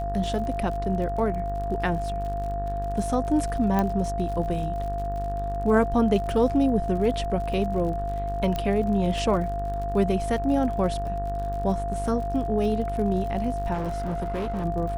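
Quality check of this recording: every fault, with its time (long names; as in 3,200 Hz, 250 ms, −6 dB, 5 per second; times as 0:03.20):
mains buzz 50 Hz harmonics 38 −31 dBFS
surface crackle 54 per second −34 dBFS
whistle 690 Hz −29 dBFS
0:03.79: click −12 dBFS
0:08.56: click −15 dBFS
0:13.73–0:14.65: clipping −25 dBFS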